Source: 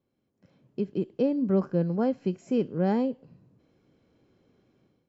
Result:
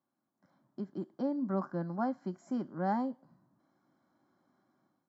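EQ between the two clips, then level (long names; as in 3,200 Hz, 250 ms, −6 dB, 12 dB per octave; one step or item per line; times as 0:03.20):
high-pass filter 340 Hz 12 dB per octave
high-shelf EQ 2,900 Hz −10 dB
phaser with its sweep stopped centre 1,100 Hz, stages 4
+3.5 dB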